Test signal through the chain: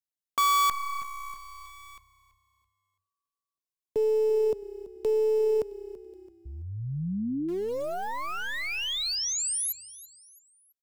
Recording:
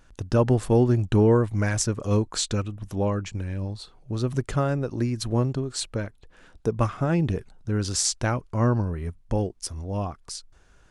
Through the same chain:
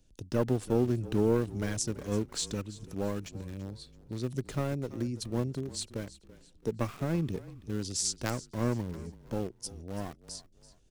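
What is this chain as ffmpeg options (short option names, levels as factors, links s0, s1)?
-filter_complex "[0:a]acrossover=split=120[s0][s1];[s0]acompressor=threshold=0.00112:ratio=1.5[s2];[s2][s1]amix=inputs=2:normalize=0,acrossover=split=610|2700[s3][s4][s5];[s4]acrusher=bits=4:dc=4:mix=0:aa=0.000001[s6];[s3][s6][s5]amix=inputs=3:normalize=0,asplit=4[s7][s8][s9][s10];[s8]adelay=333,afreqshift=-32,volume=0.133[s11];[s9]adelay=666,afreqshift=-64,volume=0.0519[s12];[s10]adelay=999,afreqshift=-96,volume=0.0202[s13];[s7][s11][s12][s13]amix=inputs=4:normalize=0,volume=0.473"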